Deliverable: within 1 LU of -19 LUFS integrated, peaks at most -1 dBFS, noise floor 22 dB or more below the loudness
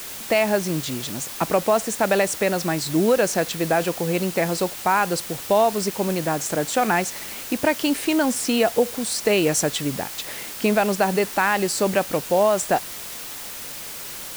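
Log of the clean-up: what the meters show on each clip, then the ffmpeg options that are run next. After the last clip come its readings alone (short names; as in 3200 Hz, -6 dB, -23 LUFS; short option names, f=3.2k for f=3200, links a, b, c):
noise floor -35 dBFS; noise floor target -44 dBFS; loudness -22.0 LUFS; peak -7.5 dBFS; loudness target -19.0 LUFS
-> -af "afftdn=nr=9:nf=-35"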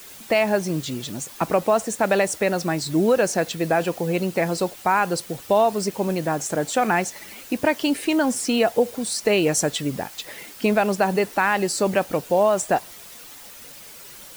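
noise floor -42 dBFS; noise floor target -44 dBFS
-> -af "afftdn=nr=6:nf=-42"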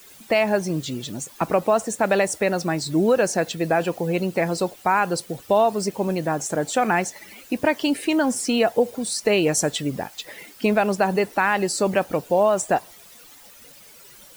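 noise floor -47 dBFS; loudness -22.5 LUFS; peak -8.0 dBFS; loudness target -19.0 LUFS
-> -af "volume=3.5dB"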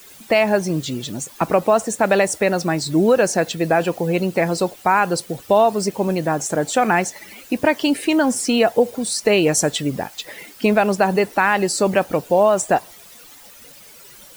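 loudness -19.0 LUFS; peak -4.5 dBFS; noise floor -44 dBFS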